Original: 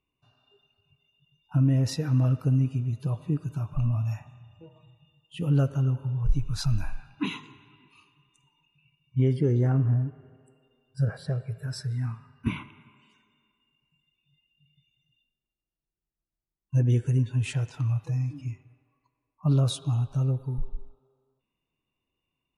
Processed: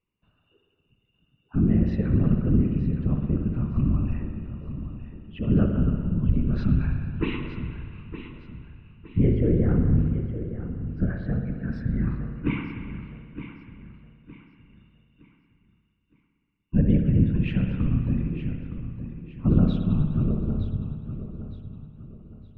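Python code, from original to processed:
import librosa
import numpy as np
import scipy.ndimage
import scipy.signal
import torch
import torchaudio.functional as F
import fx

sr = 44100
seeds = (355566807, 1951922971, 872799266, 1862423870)

p1 = scipy.signal.sosfilt(scipy.signal.butter(4, 2600.0, 'lowpass', fs=sr, output='sos'), x)
p2 = fx.peak_eq(p1, sr, hz=800.0, db=-9.5, octaves=0.71)
p3 = fx.rider(p2, sr, range_db=4, speed_s=2.0)
p4 = p2 + (p3 * 10.0 ** (2.0 / 20.0))
p5 = fx.whisperise(p4, sr, seeds[0])
p6 = p5 + fx.echo_feedback(p5, sr, ms=914, feedback_pct=36, wet_db=-11.5, dry=0)
p7 = fx.rev_spring(p6, sr, rt60_s=1.9, pass_ms=(59,), chirp_ms=60, drr_db=4.5)
y = p7 * 10.0 ** (-5.5 / 20.0)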